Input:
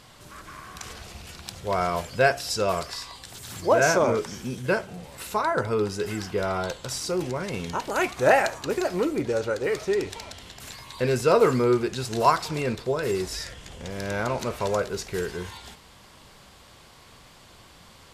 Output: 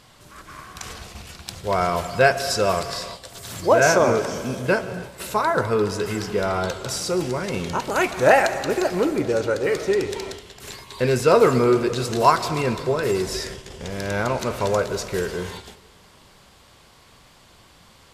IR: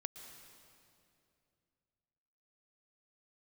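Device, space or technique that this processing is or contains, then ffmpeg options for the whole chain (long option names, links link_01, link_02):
keyed gated reverb: -filter_complex "[0:a]asplit=3[link_01][link_02][link_03];[1:a]atrim=start_sample=2205[link_04];[link_02][link_04]afir=irnorm=-1:irlink=0[link_05];[link_03]apad=whole_len=799928[link_06];[link_05][link_06]sidechaingate=range=-12dB:threshold=-41dB:ratio=16:detection=peak,volume=5dB[link_07];[link_01][link_07]amix=inputs=2:normalize=0,volume=-3dB"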